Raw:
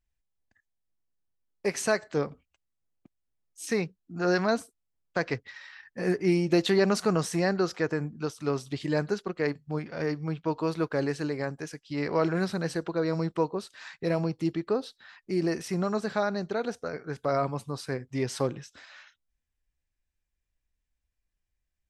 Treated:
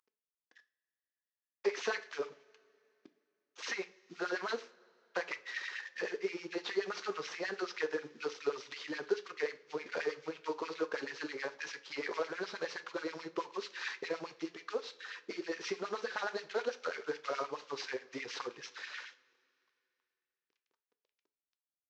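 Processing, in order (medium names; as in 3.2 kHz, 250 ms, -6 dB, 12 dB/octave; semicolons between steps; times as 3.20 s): CVSD coder 32 kbps; peaking EQ 670 Hz -11 dB 0.48 oct; compression 6:1, threshold -36 dBFS, peak gain reduction 15 dB; LFO high-pass sine 9.4 Hz 410–2500 Hz; two-slope reverb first 0.33 s, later 2.8 s, from -22 dB, DRR 10 dB; trim +2 dB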